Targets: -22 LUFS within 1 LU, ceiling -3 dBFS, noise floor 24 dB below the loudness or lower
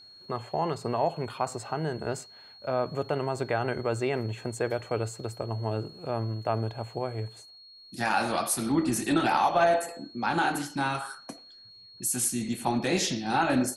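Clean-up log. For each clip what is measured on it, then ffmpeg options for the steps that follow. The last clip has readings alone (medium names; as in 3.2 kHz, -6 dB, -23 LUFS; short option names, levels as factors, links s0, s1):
steady tone 4.3 kHz; tone level -49 dBFS; loudness -29.0 LUFS; peak level -12.0 dBFS; loudness target -22.0 LUFS
-> -af "bandreject=f=4300:w=30"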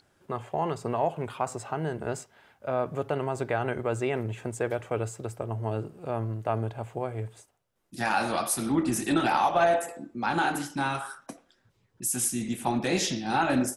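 steady tone not found; loudness -29.0 LUFS; peak level -12.5 dBFS; loudness target -22.0 LUFS
-> -af "volume=2.24"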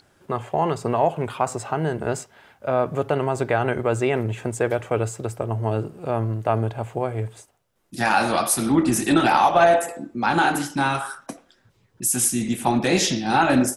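loudness -22.0 LUFS; peak level -5.5 dBFS; noise floor -62 dBFS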